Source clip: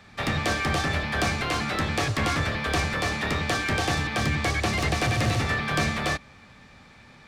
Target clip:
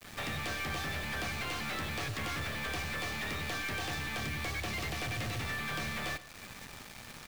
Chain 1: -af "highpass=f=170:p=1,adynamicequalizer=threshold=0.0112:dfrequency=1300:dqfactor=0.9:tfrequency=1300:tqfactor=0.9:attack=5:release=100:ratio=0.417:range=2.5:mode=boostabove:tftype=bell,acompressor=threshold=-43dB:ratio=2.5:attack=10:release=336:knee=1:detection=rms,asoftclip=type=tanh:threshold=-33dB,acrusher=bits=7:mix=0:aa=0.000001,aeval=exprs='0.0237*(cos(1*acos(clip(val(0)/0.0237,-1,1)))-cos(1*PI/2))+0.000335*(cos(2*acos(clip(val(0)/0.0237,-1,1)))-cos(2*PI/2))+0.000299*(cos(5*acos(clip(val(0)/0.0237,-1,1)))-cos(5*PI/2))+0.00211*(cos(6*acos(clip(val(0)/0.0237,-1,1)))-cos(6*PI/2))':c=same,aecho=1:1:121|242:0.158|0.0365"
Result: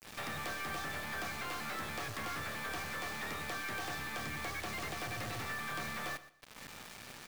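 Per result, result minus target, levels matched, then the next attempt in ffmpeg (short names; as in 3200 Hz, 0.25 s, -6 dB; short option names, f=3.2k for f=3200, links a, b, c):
compressor: peak gain reduction +5.5 dB; 125 Hz band -4.0 dB; 1000 Hz band +3.0 dB
-af "highpass=f=170:p=1,adynamicequalizer=threshold=0.0112:dfrequency=1300:dqfactor=0.9:tfrequency=1300:tqfactor=0.9:attack=5:release=100:ratio=0.417:range=2.5:mode=boostabove:tftype=bell,acompressor=threshold=-33.5dB:ratio=2.5:attack=10:release=336:knee=1:detection=rms,asoftclip=type=tanh:threshold=-33dB,acrusher=bits=7:mix=0:aa=0.000001,aeval=exprs='0.0237*(cos(1*acos(clip(val(0)/0.0237,-1,1)))-cos(1*PI/2))+0.000335*(cos(2*acos(clip(val(0)/0.0237,-1,1)))-cos(2*PI/2))+0.000299*(cos(5*acos(clip(val(0)/0.0237,-1,1)))-cos(5*PI/2))+0.00211*(cos(6*acos(clip(val(0)/0.0237,-1,1)))-cos(6*PI/2))':c=same,aecho=1:1:121|242:0.158|0.0365"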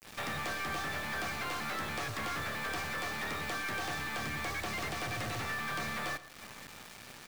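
125 Hz band -4.0 dB; 1000 Hz band +3.0 dB
-af "adynamicequalizer=threshold=0.0112:dfrequency=1300:dqfactor=0.9:tfrequency=1300:tqfactor=0.9:attack=5:release=100:ratio=0.417:range=2.5:mode=boostabove:tftype=bell,acompressor=threshold=-33.5dB:ratio=2.5:attack=10:release=336:knee=1:detection=rms,asoftclip=type=tanh:threshold=-33dB,acrusher=bits=7:mix=0:aa=0.000001,aeval=exprs='0.0237*(cos(1*acos(clip(val(0)/0.0237,-1,1)))-cos(1*PI/2))+0.000335*(cos(2*acos(clip(val(0)/0.0237,-1,1)))-cos(2*PI/2))+0.000299*(cos(5*acos(clip(val(0)/0.0237,-1,1)))-cos(5*PI/2))+0.00211*(cos(6*acos(clip(val(0)/0.0237,-1,1)))-cos(6*PI/2))':c=same,aecho=1:1:121|242:0.158|0.0365"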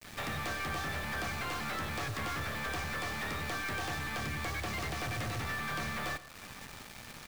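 1000 Hz band +2.5 dB
-af "adynamicequalizer=threshold=0.0112:dfrequency=2700:dqfactor=0.9:tfrequency=2700:tqfactor=0.9:attack=5:release=100:ratio=0.417:range=2.5:mode=boostabove:tftype=bell,acompressor=threshold=-33.5dB:ratio=2.5:attack=10:release=336:knee=1:detection=rms,asoftclip=type=tanh:threshold=-33dB,acrusher=bits=7:mix=0:aa=0.000001,aeval=exprs='0.0237*(cos(1*acos(clip(val(0)/0.0237,-1,1)))-cos(1*PI/2))+0.000335*(cos(2*acos(clip(val(0)/0.0237,-1,1)))-cos(2*PI/2))+0.000299*(cos(5*acos(clip(val(0)/0.0237,-1,1)))-cos(5*PI/2))+0.00211*(cos(6*acos(clip(val(0)/0.0237,-1,1)))-cos(6*PI/2))':c=same,aecho=1:1:121|242:0.158|0.0365"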